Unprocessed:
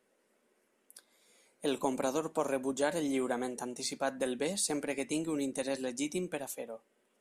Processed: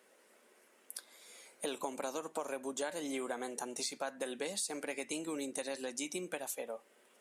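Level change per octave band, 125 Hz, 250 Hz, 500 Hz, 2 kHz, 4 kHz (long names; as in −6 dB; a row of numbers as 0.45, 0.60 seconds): −12.0, −8.0, −6.0, −3.0, −2.0 decibels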